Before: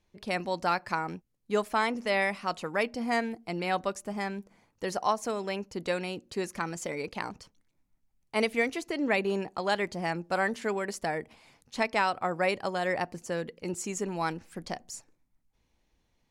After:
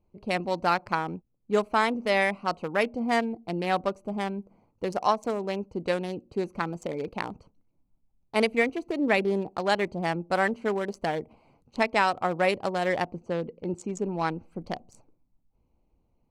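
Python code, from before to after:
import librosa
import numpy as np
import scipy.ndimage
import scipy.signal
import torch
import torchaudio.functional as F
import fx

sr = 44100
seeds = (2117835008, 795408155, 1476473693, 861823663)

y = fx.wiener(x, sr, points=25)
y = fx.air_absorb(y, sr, metres=66.0, at=(13.05, 14.43))
y = y * 10.0 ** (4.0 / 20.0)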